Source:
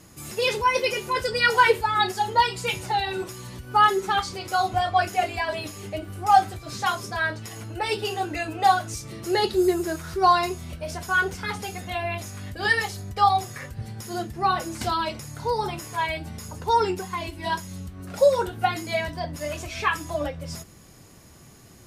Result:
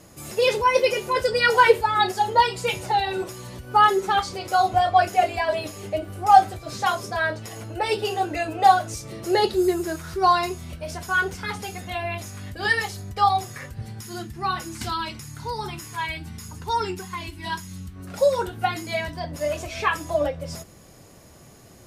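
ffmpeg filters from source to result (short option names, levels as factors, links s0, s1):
-af "asetnsamples=n=441:p=0,asendcmd='9.54 equalizer g -0.5;13.99 equalizer g -12;17.96 equalizer g -1.5;19.31 equalizer g 6.5',equalizer=f=580:t=o:w=0.88:g=7"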